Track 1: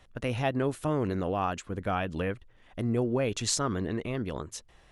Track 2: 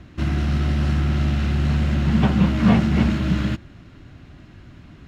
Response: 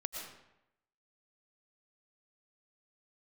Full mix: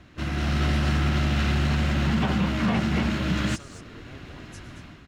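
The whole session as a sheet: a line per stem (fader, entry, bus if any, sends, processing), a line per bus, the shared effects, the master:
-12.5 dB, 0.00 s, send -4.5 dB, echo send -7 dB, saturation -23 dBFS, distortion -16 dB; rotary cabinet horn 5 Hz
-1.5 dB, 0.00 s, no send, no echo send, level rider gain up to 10 dB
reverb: on, RT60 0.85 s, pre-delay 75 ms
echo: delay 228 ms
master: bass shelf 420 Hz -8 dB; peak limiter -15 dBFS, peak gain reduction 7 dB

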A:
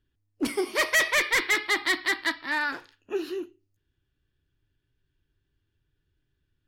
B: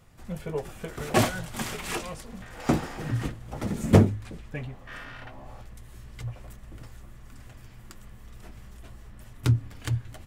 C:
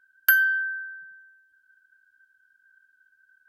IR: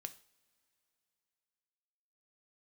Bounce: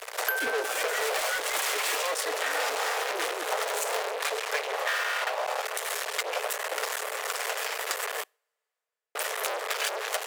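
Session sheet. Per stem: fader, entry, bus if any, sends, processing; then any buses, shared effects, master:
-6.5 dB, 0.00 s, no send, none
-2.5 dB, 0.00 s, muted 8.24–9.15 s, send -17 dB, fuzz box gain 46 dB, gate -55 dBFS; Chebyshev high-pass 430 Hz, order 6
-1.5 dB, 0.00 s, no send, none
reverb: on, pre-delay 3 ms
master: compression, threshold -26 dBFS, peak gain reduction 11.5 dB

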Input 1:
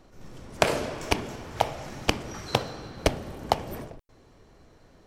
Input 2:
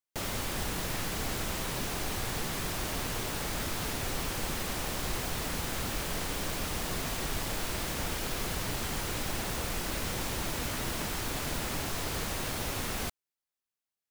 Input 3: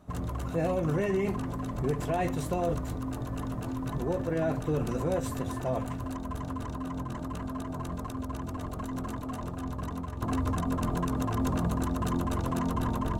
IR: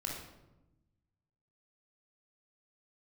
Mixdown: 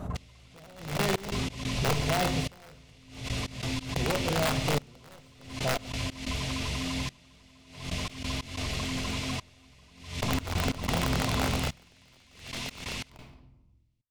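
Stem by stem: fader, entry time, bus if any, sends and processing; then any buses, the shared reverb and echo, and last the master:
mute
+2.0 dB, 0.00 s, send -4 dB, Chebyshev high-pass 2.3 kHz, order 3; low-pass 5.4 kHz 12 dB/octave
11.38 s -3 dB -> 12.03 s -13.5 dB, 0.00 s, send -8.5 dB, self-modulated delay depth 0.12 ms; tilt shelf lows +3 dB, about 1.3 kHz; integer overflow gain 19 dB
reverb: on, RT60 1.0 s, pre-delay 21 ms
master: peaking EQ 310 Hz -5.5 dB 0.21 oct; trance gate "x.....x.x.xxxx" 91 bpm -24 dB; swell ahead of each attack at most 96 dB/s

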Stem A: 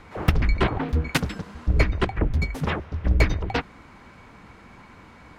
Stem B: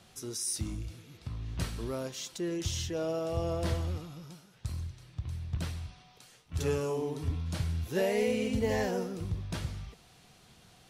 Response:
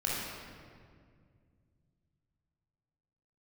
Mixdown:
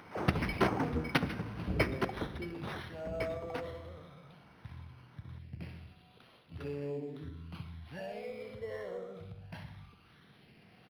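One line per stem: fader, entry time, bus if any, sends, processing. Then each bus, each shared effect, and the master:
1.84 s -5.5 dB -> 2.45 s -15.5 dB, 0.00 s, send -19 dB, no echo send, none
-2.5 dB, 0.00 s, no send, echo send -10 dB, compression 4:1, threshold -33 dBFS, peak gain reduction 7.5 dB; phase shifter stages 12, 0.2 Hz, lowest notch 260–1600 Hz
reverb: on, RT60 2.1 s, pre-delay 21 ms
echo: feedback delay 63 ms, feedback 56%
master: high-pass 140 Hz 12 dB/octave; upward compressor, threshold -52 dBFS; decimation joined by straight lines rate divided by 6×

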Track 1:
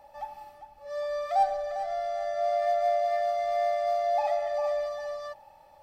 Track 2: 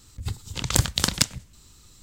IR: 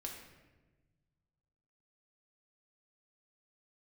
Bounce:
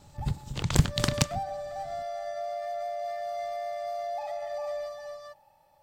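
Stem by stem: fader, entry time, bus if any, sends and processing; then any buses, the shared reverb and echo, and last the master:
-3.0 dB, 0.00 s, no send, treble shelf 5.5 kHz +9 dB; peak limiter -24 dBFS, peak gain reduction 9.5 dB; upward expansion 1.5:1, over -40 dBFS
-2.5 dB, 0.00 s, no send, cycle switcher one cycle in 3, inverted; treble shelf 4.1 kHz -9 dB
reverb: none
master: peaking EQ 140 Hz +8 dB 0.83 oct

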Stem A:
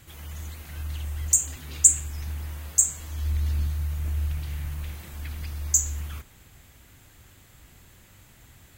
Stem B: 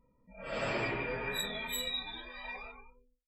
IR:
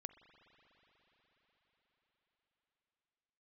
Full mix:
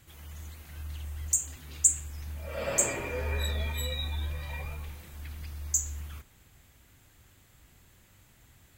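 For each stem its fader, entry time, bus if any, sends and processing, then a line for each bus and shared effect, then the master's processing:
-6.5 dB, 0.00 s, no send, none
-3.5 dB, 2.05 s, send -3.5 dB, peaking EQ 540 Hz +7.5 dB 0.29 oct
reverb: on, pre-delay 41 ms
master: none

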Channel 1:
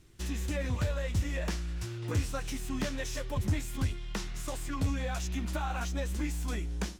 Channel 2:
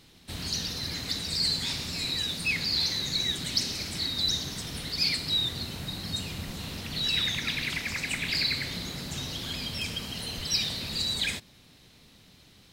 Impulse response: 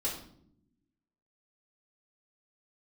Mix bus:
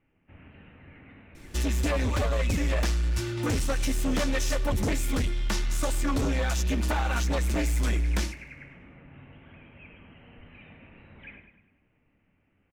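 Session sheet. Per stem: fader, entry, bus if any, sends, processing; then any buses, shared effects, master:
-5.5 dB, 1.35 s, no send, echo send -22.5 dB, comb 3.4 ms, depth 63%; sine folder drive 10 dB, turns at -16.5 dBFS
-15.5 dB, 0.00 s, send -7.5 dB, echo send -6 dB, steep low-pass 2.7 kHz 72 dB/octave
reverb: on, RT60 0.65 s, pre-delay 3 ms
echo: feedback delay 102 ms, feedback 47%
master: none

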